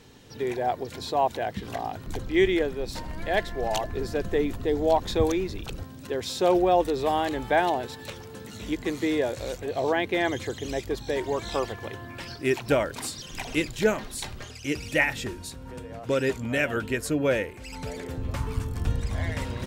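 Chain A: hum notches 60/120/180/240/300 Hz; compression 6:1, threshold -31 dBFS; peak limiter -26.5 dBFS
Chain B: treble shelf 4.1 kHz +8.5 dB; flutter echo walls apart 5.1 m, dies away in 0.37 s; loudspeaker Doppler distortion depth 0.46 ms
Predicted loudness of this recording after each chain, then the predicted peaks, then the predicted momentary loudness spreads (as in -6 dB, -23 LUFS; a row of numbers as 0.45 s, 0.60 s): -37.5 LUFS, -25.5 LUFS; -26.5 dBFS, -6.5 dBFS; 4 LU, 12 LU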